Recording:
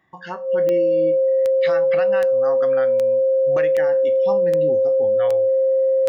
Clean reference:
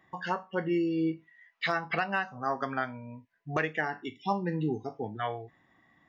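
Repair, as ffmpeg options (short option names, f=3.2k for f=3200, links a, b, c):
-af "adeclick=t=4,bandreject=f=530:w=30"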